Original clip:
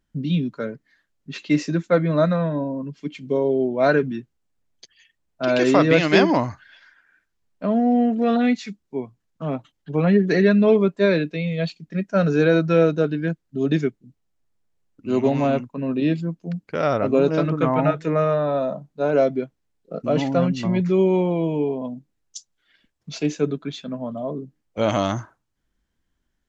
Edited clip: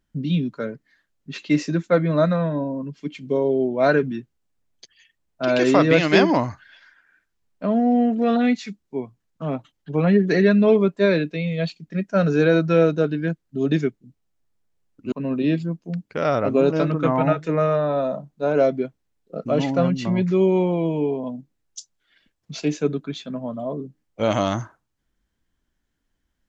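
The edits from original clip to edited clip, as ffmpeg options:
ffmpeg -i in.wav -filter_complex "[0:a]asplit=2[link_01][link_02];[link_01]atrim=end=15.122[link_03];[link_02]atrim=start=15.698[link_04];[link_03][link_04]acrossfade=duration=0.004:curve1=hsin:curve2=hsin" out.wav

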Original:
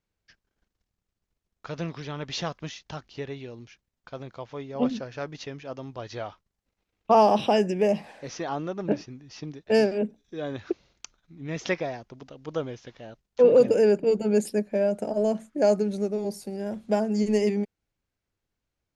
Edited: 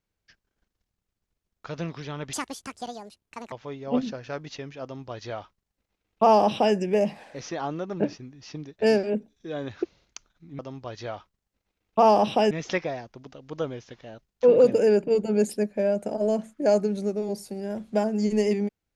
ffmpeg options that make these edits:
ffmpeg -i in.wav -filter_complex "[0:a]asplit=5[link_01][link_02][link_03][link_04][link_05];[link_01]atrim=end=2.334[link_06];[link_02]atrim=start=2.33:end=4.4,asetpts=PTS-STARTPTS,asetrate=76734,aresample=44100[link_07];[link_03]atrim=start=4.396:end=11.472[link_08];[link_04]atrim=start=5.708:end=7.632[link_09];[link_05]atrim=start=11.468[link_10];[link_06][link_07]acrossfade=duration=0.004:curve1=hsin:curve2=hsin[link_11];[link_11][link_08]acrossfade=duration=0.004:curve1=hsin:curve2=hsin[link_12];[link_12][link_09]acrossfade=duration=0.004:curve1=hsin:curve2=hsin[link_13];[link_13][link_10]acrossfade=duration=0.004:curve1=hsin:curve2=hsin" out.wav

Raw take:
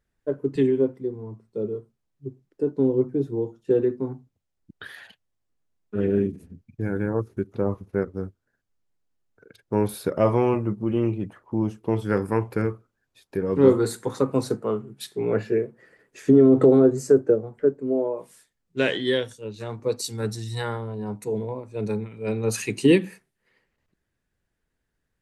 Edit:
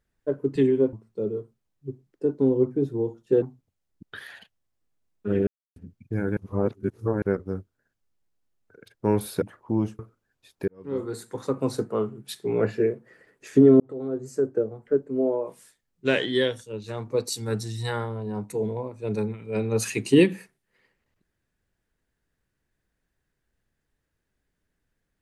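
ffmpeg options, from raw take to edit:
ffmpeg -i in.wav -filter_complex "[0:a]asplit=11[link_01][link_02][link_03][link_04][link_05][link_06][link_07][link_08][link_09][link_10][link_11];[link_01]atrim=end=0.932[link_12];[link_02]atrim=start=1.308:end=3.802[link_13];[link_03]atrim=start=4.098:end=6.15,asetpts=PTS-STARTPTS,afade=type=out:start_time=2.048:duration=0.004:curve=hsin[link_14];[link_04]atrim=start=6.15:end=6.44,asetpts=PTS-STARTPTS,volume=0[link_15];[link_05]atrim=start=6.44:end=7.052,asetpts=PTS-STARTPTS,afade=type=in:duration=0.004:curve=hsin[link_16];[link_06]atrim=start=7.048:end=7.902,asetpts=PTS-STARTPTS,areverse[link_17];[link_07]atrim=start=7.898:end=10.102[link_18];[link_08]atrim=start=11.248:end=11.822[link_19];[link_09]atrim=start=12.708:end=13.4,asetpts=PTS-STARTPTS,afade=type=out:start_time=0.688:duration=0.004:curve=hsin[link_20];[link_10]atrim=start=13.4:end=16.52,asetpts=PTS-STARTPTS,afade=type=in:duration=1.34,afade=type=out:start_time=3.116:duration=0.004:curve=hsin[link_21];[link_11]atrim=start=16.52,asetpts=PTS-STARTPTS,afade=type=in:duration=1.46[link_22];[link_12][link_13]acrossfade=duration=0.004:curve1=hsin:curve2=hsin[link_23];[link_14][link_15][link_16]concat=n=3:v=0:a=1[link_24];[link_23][link_24]acrossfade=duration=0.004:curve1=hsin:curve2=hsin[link_25];[link_25][link_17]acrossfade=duration=0.004:curve1=hsin:curve2=hsin[link_26];[link_26][link_18]acrossfade=duration=0.004:curve1=hsin:curve2=hsin[link_27];[link_27][link_19]acrossfade=duration=0.004:curve1=hsin:curve2=hsin[link_28];[link_20][link_21][link_22]concat=n=3:v=0:a=1[link_29];[link_28][link_29]acrossfade=duration=0.004:curve1=hsin:curve2=hsin" out.wav

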